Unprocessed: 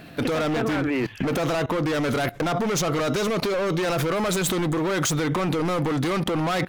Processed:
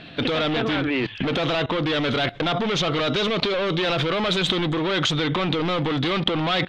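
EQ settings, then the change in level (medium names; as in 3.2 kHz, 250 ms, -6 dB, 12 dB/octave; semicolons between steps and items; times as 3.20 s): resonant low-pass 3.5 kHz, resonance Q 3.7; 0.0 dB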